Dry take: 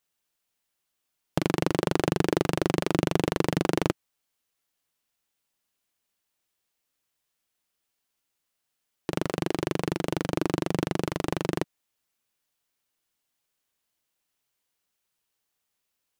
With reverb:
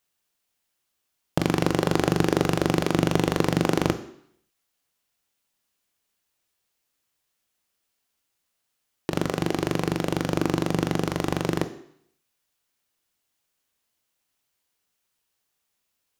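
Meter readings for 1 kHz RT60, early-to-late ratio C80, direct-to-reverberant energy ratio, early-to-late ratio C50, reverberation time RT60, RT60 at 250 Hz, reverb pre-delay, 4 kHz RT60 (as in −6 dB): 0.70 s, 16.0 dB, 10.0 dB, 13.5 dB, 0.65 s, 0.65 s, 19 ms, 0.70 s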